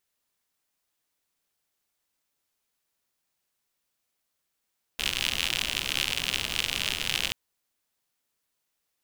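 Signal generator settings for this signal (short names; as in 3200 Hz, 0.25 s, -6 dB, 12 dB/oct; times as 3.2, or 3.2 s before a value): rain from filtered ticks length 2.33 s, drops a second 85, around 2900 Hz, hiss -9.5 dB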